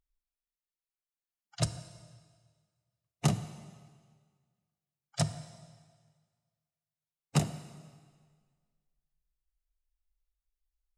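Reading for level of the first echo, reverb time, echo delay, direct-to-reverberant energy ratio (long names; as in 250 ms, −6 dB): no echo audible, 1.7 s, no echo audible, 11.0 dB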